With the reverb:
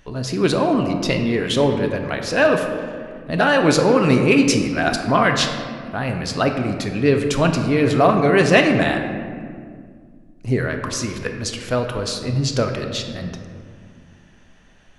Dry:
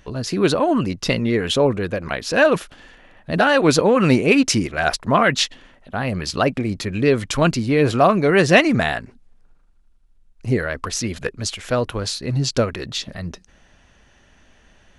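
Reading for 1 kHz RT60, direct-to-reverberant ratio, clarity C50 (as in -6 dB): 1.8 s, 4.0 dB, 6.0 dB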